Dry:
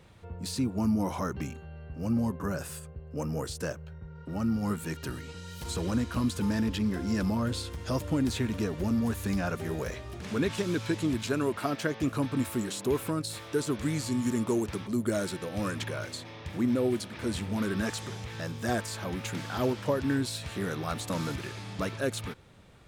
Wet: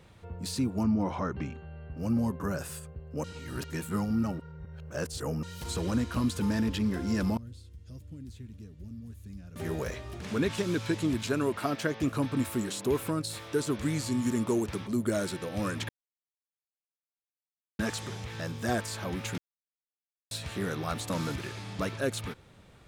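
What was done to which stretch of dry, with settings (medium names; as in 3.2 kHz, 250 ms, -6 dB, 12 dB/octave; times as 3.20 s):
0.83–1.97 s: low-pass 3.6 kHz
3.24–5.43 s: reverse
7.37–9.56 s: amplifier tone stack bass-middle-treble 10-0-1
15.89–17.79 s: mute
19.38–20.31 s: mute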